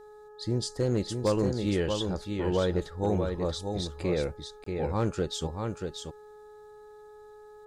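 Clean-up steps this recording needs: clip repair -18 dBFS; de-hum 422.5 Hz, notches 4; interpolate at 4.64 s, 24 ms; inverse comb 634 ms -5.5 dB

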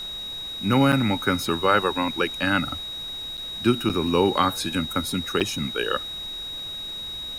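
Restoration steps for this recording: band-stop 3.8 kHz, Q 30; interpolate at 0.92/3.37/3.89/5.40 s, 7.7 ms; noise reduction 30 dB, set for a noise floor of -34 dBFS

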